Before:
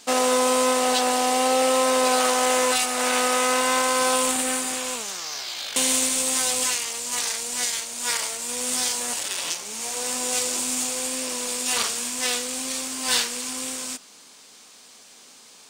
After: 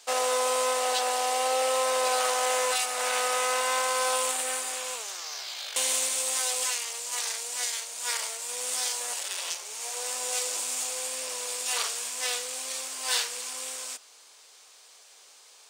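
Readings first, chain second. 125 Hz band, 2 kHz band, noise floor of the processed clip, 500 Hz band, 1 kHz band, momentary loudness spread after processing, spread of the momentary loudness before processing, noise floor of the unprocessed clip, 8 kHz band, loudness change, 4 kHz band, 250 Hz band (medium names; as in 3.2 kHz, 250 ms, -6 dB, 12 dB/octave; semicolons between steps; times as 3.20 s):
no reading, -5.0 dB, -54 dBFS, -6.0 dB, -5.0 dB, 8 LU, 8 LU, -49 dBFS, -5.0 dB, -5.5 dB, -5.0 dB, -23.0 dB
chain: high-pass 430 Hz 24 dB/octave; trim -5 dB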